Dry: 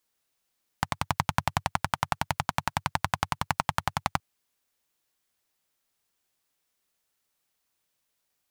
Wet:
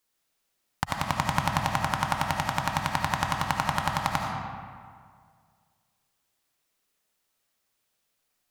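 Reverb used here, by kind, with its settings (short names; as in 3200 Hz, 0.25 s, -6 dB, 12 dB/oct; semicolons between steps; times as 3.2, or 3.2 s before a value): digital reverb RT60 2 s, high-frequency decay 0.6×, pre-delay 35 ms, DRR 0.5 dB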